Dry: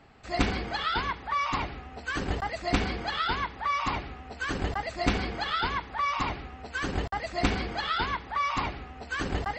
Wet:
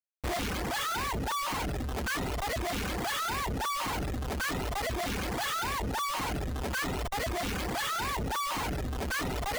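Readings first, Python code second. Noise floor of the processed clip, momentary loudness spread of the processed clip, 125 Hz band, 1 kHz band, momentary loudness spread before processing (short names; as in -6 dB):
-34 dBFS, 3 LU, -0.5 dB, -3.0 dB, 7 LU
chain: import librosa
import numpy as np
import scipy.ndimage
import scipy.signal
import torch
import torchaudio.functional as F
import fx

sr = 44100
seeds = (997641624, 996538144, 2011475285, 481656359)

y = fx.schmitt(x, sr, flips_db=-43.0)
y = fx.dereverb_blind(y, sr, rt60_s=0.81)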